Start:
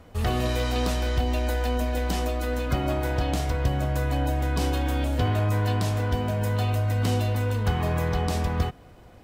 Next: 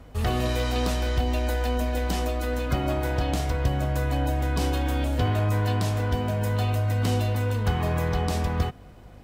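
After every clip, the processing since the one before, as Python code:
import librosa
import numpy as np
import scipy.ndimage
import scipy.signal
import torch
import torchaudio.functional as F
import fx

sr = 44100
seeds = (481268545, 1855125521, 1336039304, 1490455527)

y = fx.add_hum(x, sr, base_hz=50, snr_db=25)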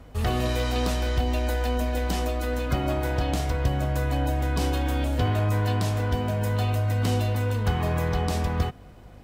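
y = x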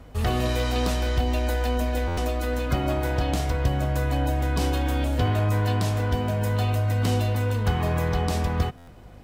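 y = fx.buffer_glitch(x, sr, at_s=(2.07, 8.77), block=512, repeats=8)
y = F.gain(torch.from_numpy(y), 1.0).numpy()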